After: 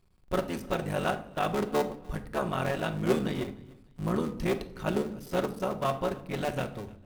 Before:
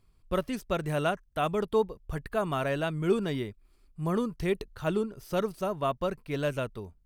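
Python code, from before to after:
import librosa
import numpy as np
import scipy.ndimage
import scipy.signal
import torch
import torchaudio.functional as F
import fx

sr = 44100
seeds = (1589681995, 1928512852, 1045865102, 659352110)

p1 = fx.cycle_switch(x, sr, every=3, mode='muted')
p2 = p1 + fx.echo_feedback(p1, sr, ms=299, feedback_pct=30, wet_db=-24, dry=0)
y = fx.room_shoebox(p2, sr, seeds[0], volume_m3=980.0, walls='furnished', distance_m=1.0)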